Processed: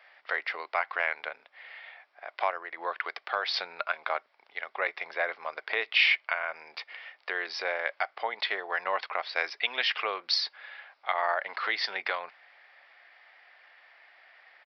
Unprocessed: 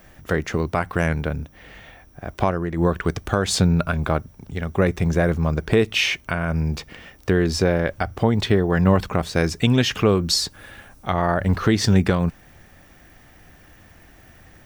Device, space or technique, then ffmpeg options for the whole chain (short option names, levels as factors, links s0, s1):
musical greeting card: -af "aresample=11025,aresample=44100,highpass=f=670:w=0.5412,highpass=f=670:w=1.3066,equalizer=f=2100:t=o:w=0.35:g=8,volume=0.596"